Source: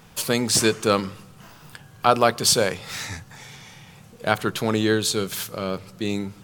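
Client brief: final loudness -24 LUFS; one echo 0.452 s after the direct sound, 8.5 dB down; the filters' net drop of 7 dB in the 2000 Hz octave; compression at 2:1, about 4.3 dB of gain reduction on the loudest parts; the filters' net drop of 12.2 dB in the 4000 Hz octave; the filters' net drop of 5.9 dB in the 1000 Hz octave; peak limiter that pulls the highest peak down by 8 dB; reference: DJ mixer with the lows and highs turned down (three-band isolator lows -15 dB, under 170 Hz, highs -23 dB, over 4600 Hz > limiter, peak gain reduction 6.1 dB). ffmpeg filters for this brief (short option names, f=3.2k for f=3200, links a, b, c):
-filter_complex "[0:a]equalizer=f=1k:t=o:g=-7,equalizer=f=2k:t=o:g=-4.5,equalizer=f=4k:t=o:g=-8.5,acompressor=threshold=-24dB:ratio=2,alimiter=limit=-18dB:level=0:latency=1,acrossover=split=170 4600:gain=0.178 1 0.0708[a][b][c];[a][b][c]amix=inputs=3:normalize=0,aecho=1:1:452:0.376,volume=11.5dB,alimiter=limit=-12.5dB:level=0:latency=1"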